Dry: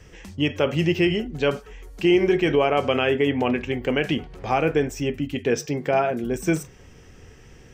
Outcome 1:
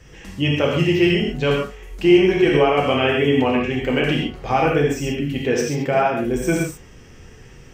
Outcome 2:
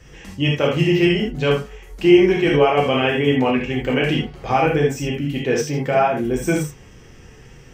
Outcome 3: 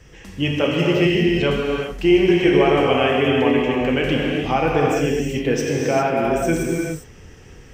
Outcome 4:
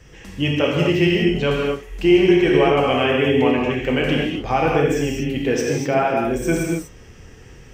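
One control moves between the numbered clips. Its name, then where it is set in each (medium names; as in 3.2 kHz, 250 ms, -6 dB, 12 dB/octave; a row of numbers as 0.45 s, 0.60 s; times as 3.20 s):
gated-style reverb, gate: 160 ms, 100 ms, 430 ms, 270 ms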